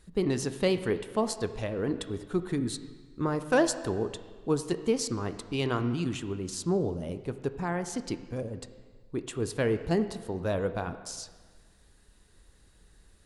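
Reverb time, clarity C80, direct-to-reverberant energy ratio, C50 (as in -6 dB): 1.5 s, 12.5 dB, 9.5 dB, 11.5 dB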